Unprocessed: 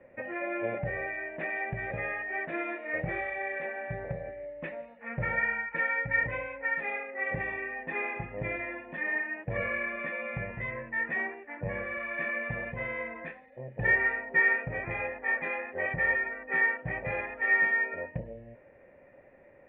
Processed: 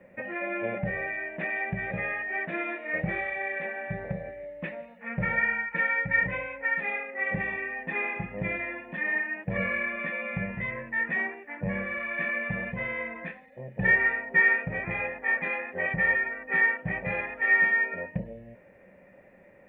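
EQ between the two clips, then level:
parametric band 190 Hz +14 dB 0.31 octaves
high-shelf EQ 2,500 Hz +8.5 dB
0.0 dB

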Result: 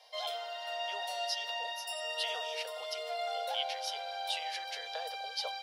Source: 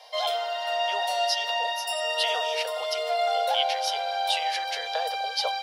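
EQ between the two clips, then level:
parametric band 830 Hz −3.5 dB 1.7 octaves
−8.5 dB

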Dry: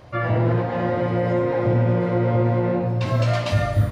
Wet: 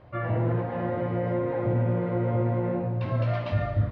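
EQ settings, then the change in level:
high-frequency loss of the air 340 metres
−5.5 dB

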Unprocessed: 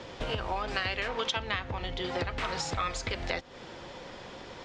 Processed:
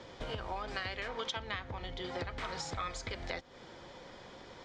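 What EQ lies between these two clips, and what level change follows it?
notch filter 2,700 Hz, Q 10
−6.5 dB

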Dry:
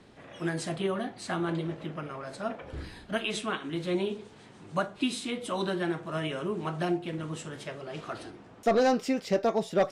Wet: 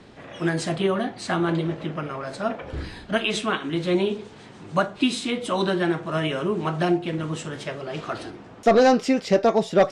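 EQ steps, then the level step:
low-pass filter 8,300 Hz 12 dB per octave
+7.5 dB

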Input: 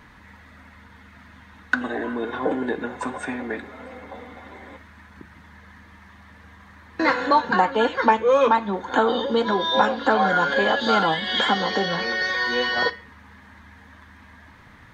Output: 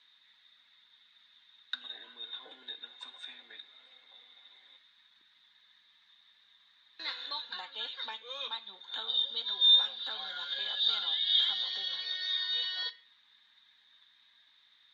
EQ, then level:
resonant band-pass 3,700 Hz, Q 15
+7.5 dB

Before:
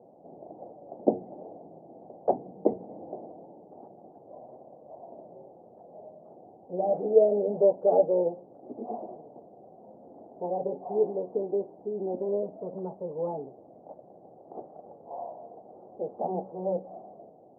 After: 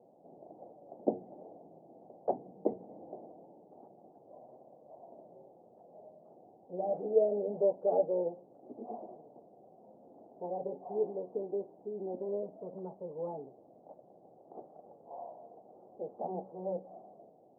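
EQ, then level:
parametric band 78 Hz −4 dB
−7.0 dB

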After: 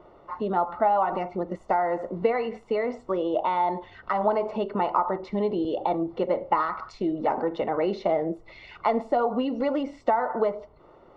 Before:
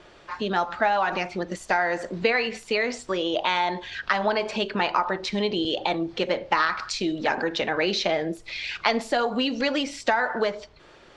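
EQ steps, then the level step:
Savitzky-Golay smoothing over 65 samples
low-shelf EQ 360 Hz −4.5 dB
+2.5 dB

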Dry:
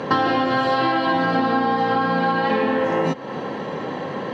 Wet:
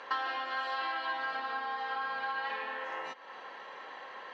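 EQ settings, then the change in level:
high-pass filter 1,200 Hz 12 dB per octave
high-shelf EQ 5,500 Hz −12 dB
−8.5 dB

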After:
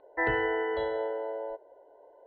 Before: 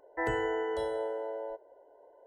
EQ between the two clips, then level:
Chebyshev low-pass filter 4,300 Hz, order 8
dynamic equaliser 1,900 Hz, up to +6 dB, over −53 dBFS, Q 2.6
+2.5 dB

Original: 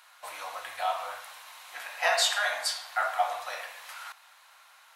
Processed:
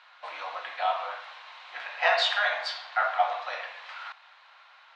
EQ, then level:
high-pass filter 270 Hz 12 dB per octave
low-pass filter 4,100 Hz 24 dB per octave
+2.5 dB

